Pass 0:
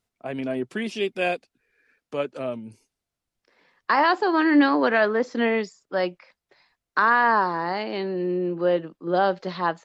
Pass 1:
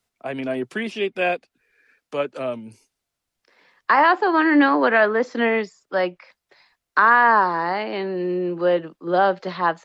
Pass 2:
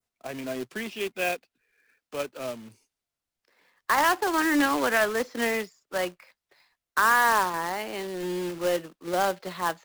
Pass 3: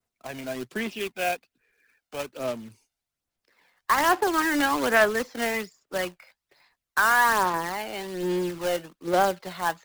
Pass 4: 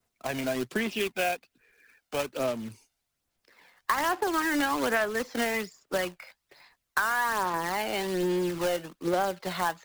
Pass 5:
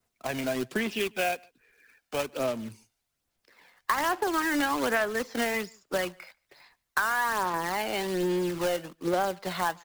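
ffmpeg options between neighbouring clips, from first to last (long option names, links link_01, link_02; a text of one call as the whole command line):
ffmpeg -i in.wav -filter_complex "[0:a]lowshelf=frequency=490:gain=-6,acrossover=split=120|410|3000[link_01][link_02][link_03][link_04];[link_04]acompressor=threshold=-52dB:ratio=4[link_05];[link_01][link_02][link_03][link_05]amix=inputs=4:normalize=0,volume=5.5dB" out.wav
ffmpeg -i in.wav -af "adynamicequalizer=threshold=0.0282:dfrequency=3000:dqfactor=0.91:tfrequency=3000:tqfactor=0.91:attack=5:release=100:ratio=0.375:range=2:mode=boostabove:tftype=bell,acrusher=bits=2:mode=log:mix=0:aa=0.000001,volume=-8dB" out.wav
ffmpeg -i in.wav -af "aphaser=in_gain=1:out_gain=1:delay=1.4:decay=0.41:speed=1.2:type=sinusoidal" out.wav
ffmpeg -i in.wav -af "acompressor=threshold=-31dB:ratio=4,volume=5.5dB" out.wav
ffmpeg -i in.wav -filter_complex "[0:a]asplit=2[link_01][link_02];[link_02]adelay=145.8,volume=-28dB,highshelf=frequency=4000:gain=-3.28[link_03];[link_01][link_03]amix=inputs=2:normalize=0" out.wav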